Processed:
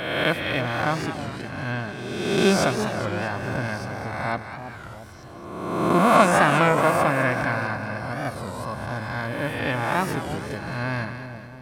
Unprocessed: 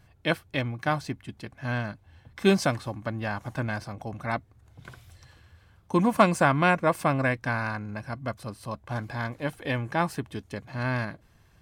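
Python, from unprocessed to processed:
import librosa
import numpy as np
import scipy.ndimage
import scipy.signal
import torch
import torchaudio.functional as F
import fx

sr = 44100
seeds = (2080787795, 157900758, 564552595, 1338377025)

y = fx.spec_swells(x, sr, rise_s=1.45)
y = fx.echo_split(y, sr, split_hz=860.0, low_ms=335, high_ms=213, feedback_pct=52, wet_db=-9.0)
y = fx.record_warp(y, sr, rpm=33.33, depth_cents=160.0)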